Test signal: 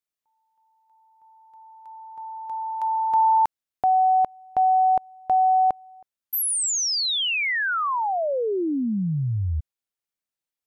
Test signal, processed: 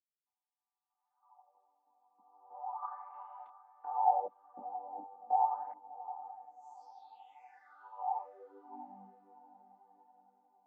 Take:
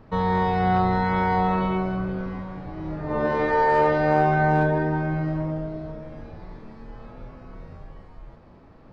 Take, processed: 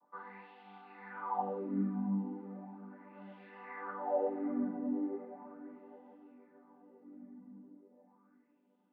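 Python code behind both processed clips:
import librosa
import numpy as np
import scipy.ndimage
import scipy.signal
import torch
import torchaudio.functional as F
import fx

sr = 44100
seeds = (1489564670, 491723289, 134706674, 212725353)

y = fx.chord_vocoder(x, sr, chord='major triad', root=55)
y = fx.high_shelf(y, sr, hz=2300.0, db=-8.0)
y = fx.wah_lfo(y, sr, hz=0.37, low_hz=220.0, high_hz=3200.0, q=5.2)
y = fx.echo_diffused(y, sr, ms=735, feedback_pct=43, wet_db=-14)
y = fx.detune_double(y, sr, cents=24)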